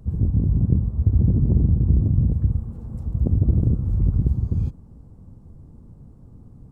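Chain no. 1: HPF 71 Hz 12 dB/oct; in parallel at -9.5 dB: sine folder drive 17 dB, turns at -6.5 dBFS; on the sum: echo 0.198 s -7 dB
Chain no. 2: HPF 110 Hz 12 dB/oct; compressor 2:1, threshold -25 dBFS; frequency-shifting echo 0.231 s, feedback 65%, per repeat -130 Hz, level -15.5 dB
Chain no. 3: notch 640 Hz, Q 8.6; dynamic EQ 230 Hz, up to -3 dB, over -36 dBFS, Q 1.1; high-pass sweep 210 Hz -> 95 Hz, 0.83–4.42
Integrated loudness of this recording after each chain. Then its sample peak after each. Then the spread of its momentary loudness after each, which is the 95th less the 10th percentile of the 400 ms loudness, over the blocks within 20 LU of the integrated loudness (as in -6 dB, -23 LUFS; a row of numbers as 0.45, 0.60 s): -17.5, -28.5, -21.5 LUFS; -4.5, -13.5, -4.5 dBFS; 17, 19, 11 LU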